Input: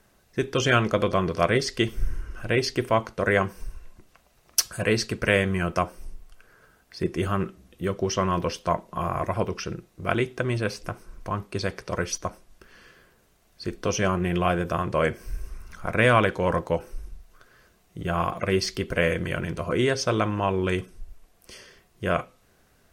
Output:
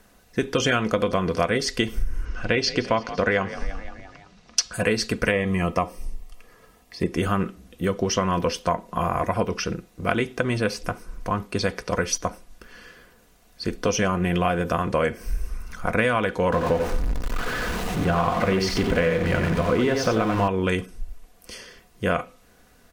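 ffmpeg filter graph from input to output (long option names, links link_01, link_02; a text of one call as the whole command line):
ffmpeg -i in.wav -filter_complex "[0:a]asettb=1/sr,asplit=3[link_01][link_02][link_03];[link_01]atrim=end=2.254[link_04];[link_02]atrim=start=2.25:end=4.74,asetpts=PTS-STARTPTS,afade=type=in:duration=0.004:curve=qsin,afade=type=out:start_time=2.486:duration=0.004:curve=qsin,lowpass=frequency=5300:width=0.5412,lowpass=frequency=5300:width=1.3066,aemphasis=mode=production:type=50kf,asplit=6[link_05][link_06][link_07][link_08][link_09][link_10];[link_06]adelay=170,afreqshift=42,volume=-19dB[link_11];[link_07]adelay=340,afreqshift=84,volume=-23.4dB[link_12];[link_08]adelay=510,afreqshift=126,volume=-27.9dB[link_13];[link_09]adelay=680,afreqshift=168,volume=-32.3dB[link_14];[link_10]adelay=850,afreqshift=210,volume=-36.7dB[link_15];[link_05][link_11][link_12][link_13][link_14][link_15]amix=inputs=6:normalize=0,atrim=end_sample=109809[link_16];[link_03]atrim=start=4.736[link_17];[link_04][link_16]acrossfade=duration=0.004:curve1=hsin:curve2=qsin[link_18];[link_18][link_17]acrossfade=duration=0.004:curve1=qsin:curve2=hsin,asettb=1/sr,asplit=3[link_19][link_20][link_21];[link_19]atrim=end=5.314[link_22];[link_20]atrim=start=5.31:end=7.12,asetpts=PTS-STARTPTS,afade=type=in:duration=0.004:curve=qsin,afade=type=out:start_time=1.806:duration=0.004:curve=qsin,acrossover=split=2800[link_23][link_24];[link_24]acompressor=threshold=-42dB:ratio=4:attack=1:release=60[link_25];[link_23][link_25]amix=inputs=2:normalize=0,asuperstop=centerf=1500:order=4:qfactor=4.9[link_26];[link_21]atrim=start=7.116[link_27];[link_22][link_26]acrossfade=duration=0.004:curve1=hsin:curve2=qsin[link_28];[link_28][link_27]acrossfade=duration=0.004:curve1=qsin:curve2=hsin,asettb=1/sr,asplit=3[link_29][link_30][link_31];[link_29]atrim=end=16.524[link_32];[link_30]atrim=start=16.52:end=20.48,asetpts=PTS-STARTPTS,afade=type=in:duration=0.004:curve=qsin,afade=type=out:start_time=3.956:duration=0.004:curve=qsin,aeval=exprs='val(0)+0.5*0.0501*sgn(val(0))':channel_layout=same,lowpass=frequency=2300:poles=1,aecho=1:1:89:0.501,atrim=end_sample=174636[link_33];[link_31]atrim=start=20.476[link_34];[link_32][link_33]acrossfade=duration=0.004:curve1=hsin:curve2=qsin[link_35];[link_35][link_34]acrossfade=duration=0.004:curve1=qsin:curve2=hsin,aecho=1:1:4.1:0.38,acompressor=threshold=-23dB:ratio=6,volume=5dB" out.wav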